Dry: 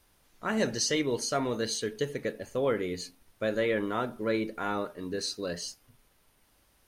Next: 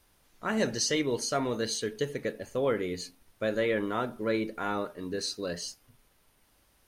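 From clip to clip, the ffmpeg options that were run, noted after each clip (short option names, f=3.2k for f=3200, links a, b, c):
-af anull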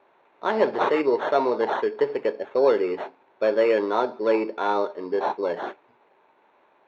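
-af "acrusher=samples=9:mix=1:aa=0.000001,highpass=380,equalizer=f=390:t=q:w=4:g=7,equalizer=f=590:t=q:w=4:g=3,equalizer=f=910:t=q:w=4:g=8,equalizer=f=1.3k:t=q:w=4:g=-3,equalizer=f=1.9k:t=q:w=4:g=-4,equalizer=f=3.1k:t=q:w=4:g=-10,lowpass=f=3.4k:w=0.5412,lowpass=f=3.4k:w=1.3066,volume=7dB"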